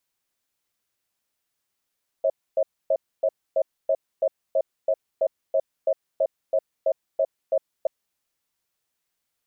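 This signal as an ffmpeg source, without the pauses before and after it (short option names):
-f lavfi -i "aevalsrc='0.0944*(sin(2*PI*544*t)+sin(2*PI*640*t))*clip(min(mod(t,0.33),0.06-mod(t,0.33))/0.005,0,1)':d=5.63:s=44100"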